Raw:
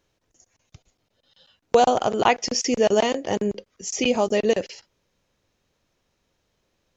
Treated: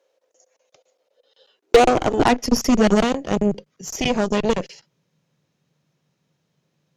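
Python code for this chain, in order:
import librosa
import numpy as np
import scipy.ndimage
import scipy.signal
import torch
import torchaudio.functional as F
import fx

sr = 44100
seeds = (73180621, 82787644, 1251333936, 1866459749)

y = fx.filter_sweep_highpass(x, sr, from_hz=520.0, to_hz=150.0, start_s=1.11, end_s=3.31, q=7.4)
y = fx.cheby_harmonics(y, sr, harmonics=(6,), levels_db=(-14,), full_scale_db=-2.0)
y = F.gain(torch.from_numpy(y), -2.0).numpy()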